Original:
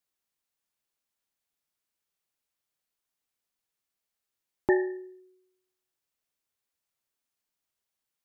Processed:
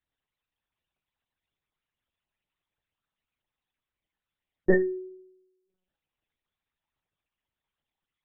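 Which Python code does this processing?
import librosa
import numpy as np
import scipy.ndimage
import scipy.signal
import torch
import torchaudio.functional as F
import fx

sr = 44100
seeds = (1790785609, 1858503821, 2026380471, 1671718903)

y = fx.envelope_sharpen(x, sr, power=3.0)
y = fx.lpc_vocoder(y, sr, seeds[0], excitation='pitch_kept', order=8)
y = y * 10.0 ** (4.0 / 20.0)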